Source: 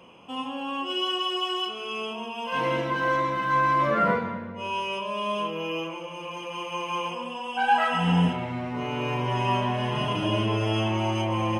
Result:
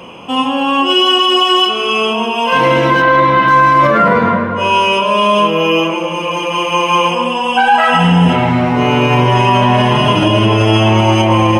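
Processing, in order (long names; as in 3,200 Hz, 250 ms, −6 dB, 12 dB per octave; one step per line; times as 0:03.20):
0:03.02–0:03.48: low-pass filter 4,500 Hz 24 dB per octave
tape delay 250 ms, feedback 67%, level −14 dB, low-pass 2,300 Hz
boost into a limiter +19 dB
level −1 dB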